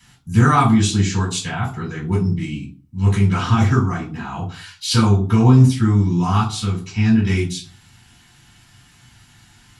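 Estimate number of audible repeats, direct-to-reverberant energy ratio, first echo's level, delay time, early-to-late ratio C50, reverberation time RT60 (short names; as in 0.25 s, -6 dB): none, -6.5 dB, none, none, 8.5 dB, 0.40 s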